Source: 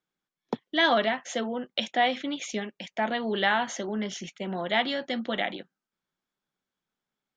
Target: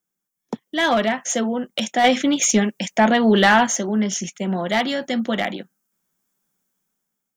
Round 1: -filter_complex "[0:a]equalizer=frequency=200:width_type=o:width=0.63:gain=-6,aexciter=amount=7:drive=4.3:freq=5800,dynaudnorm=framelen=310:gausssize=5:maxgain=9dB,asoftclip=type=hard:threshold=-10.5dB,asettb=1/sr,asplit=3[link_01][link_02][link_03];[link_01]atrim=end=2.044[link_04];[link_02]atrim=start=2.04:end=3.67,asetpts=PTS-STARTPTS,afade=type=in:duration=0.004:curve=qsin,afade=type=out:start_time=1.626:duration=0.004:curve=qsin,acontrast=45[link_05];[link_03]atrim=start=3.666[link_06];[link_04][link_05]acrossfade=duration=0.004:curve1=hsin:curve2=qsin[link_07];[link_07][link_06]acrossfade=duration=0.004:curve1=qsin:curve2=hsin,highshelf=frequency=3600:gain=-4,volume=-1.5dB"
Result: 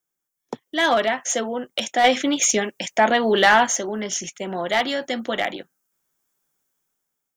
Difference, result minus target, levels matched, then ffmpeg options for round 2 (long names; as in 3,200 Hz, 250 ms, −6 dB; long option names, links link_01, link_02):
250 Hz band −6.0 dB
-filter_complex "[0:a]equalizer=frequency=200:width_type=o:width=0.63:gain=5.5,aexciter=amount=7:drive=4.3:freq=5800,dynaudnorm=framelen=310:gausssize=5:maxgain=9dB,asoftclip=type=hard:threshold=-10.5dB,asettb=1/sr,asplit=3[link_01][link_02][link_03];[link_01]atrim=end=2.044[link_04];[link_02]atrim=start=2.04:end=3.67,asetpts=PTS-STARTPTS,afade=type=in:duration=0.004:curve=qsin,afade=type=out:start_time=1.626:duration=0.004:curve=qsin,acontrast=45[link_05];[link_03]atrim=start=3.666[link_06];[link_04][link_05]acrossfade=duration=0.004:curve1=hsin:curve2=qsin[link_07];[link_07][link_06]acrossfade=duration=0.004:curve1=qsin:curve2=hsin,highshelf=frequency=3600:gain=-4,volume=-1.5dB"